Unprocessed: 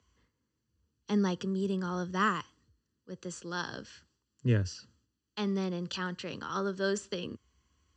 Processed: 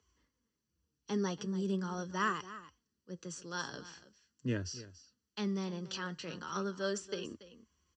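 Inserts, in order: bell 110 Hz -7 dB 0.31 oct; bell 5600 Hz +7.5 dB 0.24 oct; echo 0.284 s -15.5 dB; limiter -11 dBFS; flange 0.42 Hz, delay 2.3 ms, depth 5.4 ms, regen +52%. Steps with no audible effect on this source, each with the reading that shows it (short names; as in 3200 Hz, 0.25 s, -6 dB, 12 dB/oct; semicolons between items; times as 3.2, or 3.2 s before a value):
limiter -11 dBFS: input peak -16.5 dBFS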